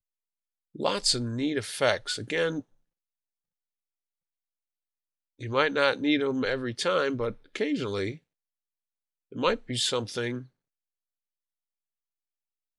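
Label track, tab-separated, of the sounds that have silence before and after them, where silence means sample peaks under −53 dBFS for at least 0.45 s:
0.750000	2.630000	sound
5.390000	8.180000	sound
9.320000	10.480000	sound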